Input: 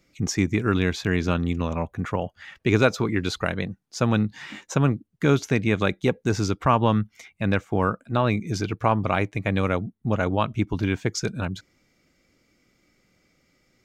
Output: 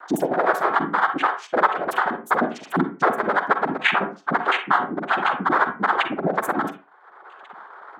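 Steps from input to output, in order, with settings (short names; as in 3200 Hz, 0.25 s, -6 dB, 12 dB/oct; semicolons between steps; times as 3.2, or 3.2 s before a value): band shelf 760 Hz +12.5 dB; vocal rider within 4 dB 0.5 s; loudest bins only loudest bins 1; noise vocoder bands 6; reverb RT60 0.45 s, pre-delay 68 ms, DRR 9 dB; speed mistake 45 rpm record played at 78 rpm; three-band squash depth 70%; gain +5.5 dB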